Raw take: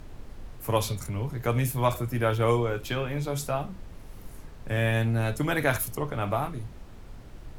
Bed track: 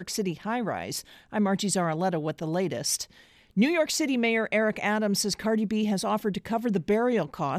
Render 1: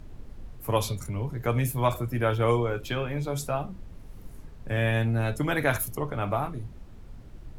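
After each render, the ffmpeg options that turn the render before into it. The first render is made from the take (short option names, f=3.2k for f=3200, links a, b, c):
-af "afftdn=nr=6:nf=-45"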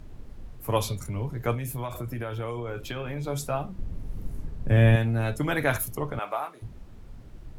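-filter_complex "[0:a]asettb=1/sr,asplit=3[a][b][c];[a]atrim=end=1.544[d];[b]atrim=start=1.54:end=3.24,asetpts=PTS-STARTPTS,afade=t=in:d=0.004:c=qsin,afade=t=out:st=1.696:d=0.004:c=qsin,acompressor=threshold=-28dB:ratio=12:attack=3.2:release=140:knee=1:detection=peak[e];[c]atrim=start=3.236[f];[d][e]acrossfade=d=0.004:c1=hsin:c2=qsin[g];[g][f]acrossfade=d=0.004:c1=qsin:c2=hsin,asettb=1/sr,asplit=3[h][i][j];[h]atrim=end=3.784[k];[i]atrim=start=3.78:end=4.96,asetpts=PTS-STARTPTS,afade=t=in:d=0.004:c=qsin,afade=t=out:st=1.176:d=0.004:c=qsin,lowshelf=f=440:g=10[l];[j]atrim=start=4.956[m];[k][l]acrossfade=d=0.004:c1=hsin:c2=qsin[n];[n][m]acrossfade=d=0.004:c1=qsin:c2=hsin,asettb=1/sr,asplit=3[o][p][q];[o]atrim=end=6.194[r];[p]atrim=start=6.19:end=6.62,asetpts=PTS-STARTPTS,afade=t=in:d=0.004:c=qsin,afade=t=out:st=0.426:d=0.004:c=qsin,highpass=610[s];[q]atrim=start=6.616[t];[r][s]acrossfade=d=0.004:c1=hsin:c2=qsin[u];[u][t]acrossfade=d=0.004:c1=qsin:c2=hsin"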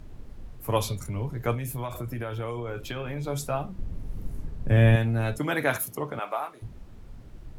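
-filter_complex "[0:a]asettb=1/sr,asplit=3[a][b][c];[a]atrim=end=5.384[d];[b]atrim=start=5.38:end=6.53,asetpts=PTS-STARTPTS,afade=t=in:d=0.004:c=qsin,afade=t=out:st=1.146:d=0.004:c=qsin,highpass=160[e];[c]atrim=start=6.526[f];[d][e]acrossfade=d=0.004:c1=hsin:c2=qsin[g];[g][f]acrossfade=d=0.004:c1=qsin:c2=hsin"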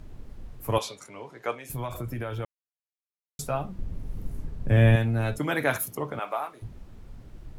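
-filter_complex "[0:a]asettb=1/sr,asplit=3[a][b][c];[a]atrim=end=0.784[d];[b]atrim=start=0.78:end=1.7,asetpts=PTS-STARTPTS,afade=t=in:d=0.004:c=qsin,afade=t=out:st=0.916:d=0.004:c=qsin,highpass=460,lowpass=7.5k[e];[c]atrim=start=1.696[f];[d][e]acrossfade=d=0.004:c1=hsin:c2=qsin[g];[g][f]acrossfade=d=0.004:c1=qsin:c2=hsin,asplit=3[h][i][j];[h]atrim=end=2.45,asetpts=PTS-STARTPTS,afade=t=out:st=2.446:d=0.004:c=hsin[k];[i]atrim=start=2.45:end=3.39,asetpts=PTS-STARTPTS,volume=0[l];[j]atrim=start=3.39,asetpts=PTS-STARTPTS,afade=t=in:d=0.004:c=hsin[m];[k][l][m]concat=n=3:v=0:a=1"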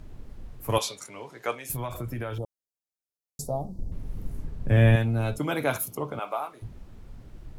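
-filter_complex "[0:a]asettb=1/sr,asplit=3[a][b][c];[a]atrim=end=0.694[d];[b]atrim=start=0.69:end=1.77,asetpts=PTS-STARTPTS,afade=t=in:d=0.004:c=qsin,afade=t=out:st=1.076:d=0.004:c=qsin,highshelf=f=3.4k:g=7.5[e];[c]atrim=start=1.766[f];[d][e]acrossfade=d=0.004:c1=hsin:c2=qsin[g];[g][f]acrossfade=d=0.004:c1=qsin:c2=hsin,asettb=1/sr,asplit=3[h][i][j];[h]atrim=end=2.384[k];[i]atrim=start=2.38:end=3.92,asetpts=PTS-STARTPTS,afade=t=in:d=0.004:c=qsin,afade=t=out:st=1.536:d=0.004:c=qsin,asuperstop=centerf=2000:order=8:qfactor=0.54[l];[j]atrim=start=3.916[m];[k][l]acrossfade=d=0.004:c1=hsin:c2=qsin[n];[n][m]acrossfade=d=0.004:c1=qsin:c2=hsin,asettb=1/sr,asplit=3[o][p][q];[o]atrim=end=5.034[r];[p]atrim=start=5.03:end=6.51,asetpts=PTS-STARTPTS,afade=t=in:d=0.004:c=qsin,afade=t=out:st=1.476:d=0.004:c=qsin,equalizer=f=1.8k:w=5.3:g=-12.5[s];[q]atrim=start=6.506[t];[r][s]acrossfade=d=0.004:c1=hsin:c2=qsin[u];[u][t]acrossfade=d=0.004:c1=qsin:c2=hsin"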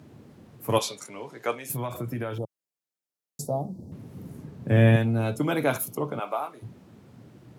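-af "highpass=f=110:w=0.5412,highpass=f=110:w=1.3066,equalizer=f=250:w=0.53:g=4"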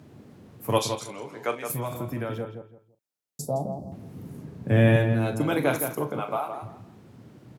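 -filter_complex "[0:a]asplit=2[a][b];[b]adelay=39,volume=-12.5dB[c];[a][c]amix=inputs=2:normalize=0,asplit=2[d][e];[e]adelay=166,lowpass=f=2.5k:p=1,volume=-7dB,asplit=2[f][g];[g]adelay=166,lowpass=f=2.5k:p=1,volume=0.26,asplit=2[h][i];[i]adelay=166,lowpass=f=2.5k:p=1,volume=0.26[j];[d][f][h][j]amix=inputs=4:normalize=0"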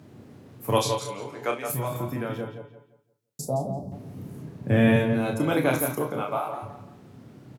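-filter_complex "[0:a]asplit=2[a][b];[b]adelay=31,volume=-5.5dB[c];[a][c]amix=inputs=2:normalize=0,asplit=2[d][e];[e]adelay=173,lowpass=f=4.9k:p=1,volume=-12.5dB,asplit=2[f][g];[g]adelay=173,lowpass=f=4.9k:p=1,volume=0.34,asplit=2[h][i];[i]adelay=173,lowpass=f=4.9k:p=1,volume=0.34[j];[d][f][h][j]amix=inputs=4:normalize=0"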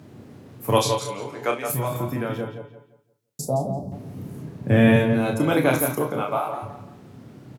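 -af "volume=3.5dB"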